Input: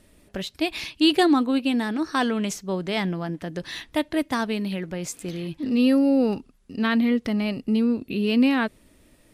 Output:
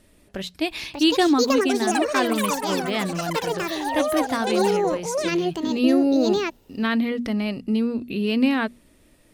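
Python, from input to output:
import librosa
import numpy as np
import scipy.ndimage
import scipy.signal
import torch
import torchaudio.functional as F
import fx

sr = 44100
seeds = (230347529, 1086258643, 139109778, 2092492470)

y = fx.echo_pitch(x, sr, ms=711, semitones=7, count=3, db_per_echo=-3.0)
y = fx.hum_notches(y, sr, base_hz=60, count=4)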